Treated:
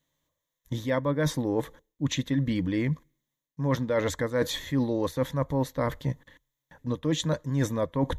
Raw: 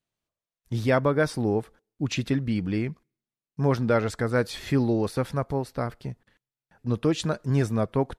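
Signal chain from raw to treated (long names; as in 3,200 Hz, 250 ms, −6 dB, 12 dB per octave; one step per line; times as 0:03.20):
EQ curve with evenly spaced ripples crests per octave 1.1, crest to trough 11 dB
reversed playback
downward compressor 6 to 1, threshold −31 dBFS, peak gain reduction 16 dB
reversed playback
level +7 dB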